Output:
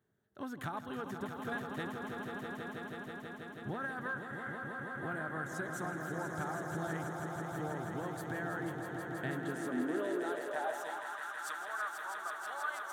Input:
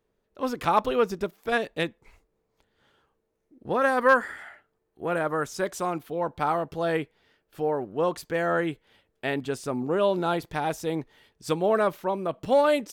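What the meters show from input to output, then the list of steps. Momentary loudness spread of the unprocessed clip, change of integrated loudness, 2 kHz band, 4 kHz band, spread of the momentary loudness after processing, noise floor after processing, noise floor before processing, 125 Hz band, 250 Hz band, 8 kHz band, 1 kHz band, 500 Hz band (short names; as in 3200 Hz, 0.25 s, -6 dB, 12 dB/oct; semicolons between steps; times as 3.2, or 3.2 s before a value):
11 LU, -13.0 dB, -8.0 dB, -13.0 dB, 5 LU, -48 dBFS, -76 dBFS, -6.0 dB, -8.5 dB, -7.0 dB, -12.5 dB, -16.0 dB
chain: thirty-one-band EQ 500 Hz -11 dB, 1000 Hz -5 dB, 1600 Hz +8 dB, 2500 Hz -10 dB, 5000 Hz -12 dB; compressor 5:1, threshold -36 dBFS, peak gain reduction 20.5 dB; on a send: swelling echo 0.162 s, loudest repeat 5, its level -7.5 dB; on the sum: high-pass sweep 110 Hz -> 1200 Hz, 9.08–11.25; gain -4 dB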